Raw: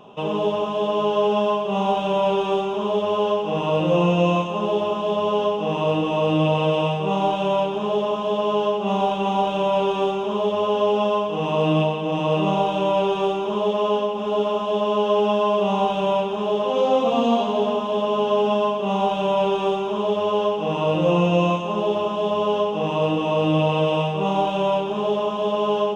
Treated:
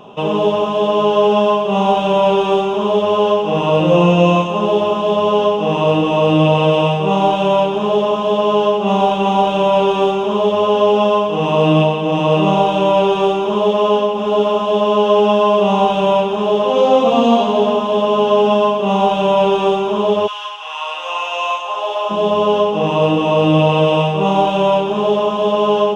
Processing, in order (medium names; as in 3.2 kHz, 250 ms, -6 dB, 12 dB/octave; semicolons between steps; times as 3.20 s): 20.26–22.09 s: high-pass 1.3 kHz -> 590 Hz 24 dB/octave; trim +7 dB